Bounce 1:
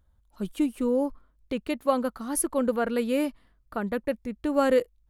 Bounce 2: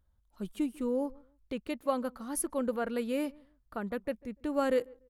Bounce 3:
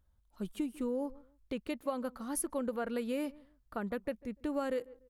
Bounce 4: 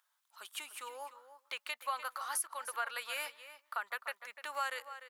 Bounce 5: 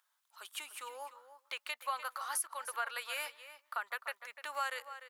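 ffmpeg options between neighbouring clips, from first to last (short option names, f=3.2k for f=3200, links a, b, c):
-filter_complex "[0:a]asplit=2[a][b];[b]adelay=146,lowpass=f=1.1k:p=1,volume=-23.5dB,asplit=2[c][d];[d]adelay=146,lowpass=f=1.1k:p=1,volume=0.24[e];[a][c][e]amix=inputs=3:normalize=0,volume=-6.5dB"
-af "acompressor=threshold=-31dB:ratio=5"
-filter_complex "[0:a]highpass=f=1k:w=0.5412,highpass=f=1k:w=1.3066,asplit=2[a][b];[b]adelay=297.4,volume=-12dB,highshelf=f=4k:g=-6.69[c];[a][c]amix=inputs=2:normalize=0,alimiter=level_in=10dB:limit=-24dB:level=0:latency=1:release=384,volume=-10dB,volume=9.5dB"
-af "highpass=280"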